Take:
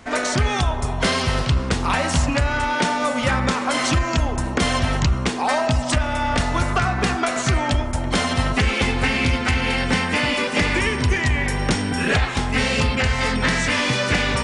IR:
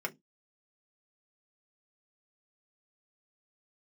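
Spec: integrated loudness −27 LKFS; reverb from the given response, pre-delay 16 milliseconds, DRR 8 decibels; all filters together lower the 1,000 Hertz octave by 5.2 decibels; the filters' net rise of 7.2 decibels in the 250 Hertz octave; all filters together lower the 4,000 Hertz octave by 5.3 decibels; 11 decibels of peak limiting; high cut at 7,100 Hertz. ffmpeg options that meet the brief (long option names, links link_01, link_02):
-filter_complex "[0:a]lowpass=7100,equalizer=frequency=250:width_type=o:gain=8.5,equalizer=frequency=1000:width_type=o:gain=-7,equalizer=frequency=4000:width_type=o:gain=-6.5,alimiter=limit=-15.5dB:level=0:latency=1,asplit=2[link_01][link_02];[1:a]atrim=start_sample=2205,adelay=16[link_03];[link_02][link_03]afir=irnorm=-1:irlink=0,volume=-12dB[link_04];[link_01][link_04]amix=inputs=2:normalize=0,volume=-3dB"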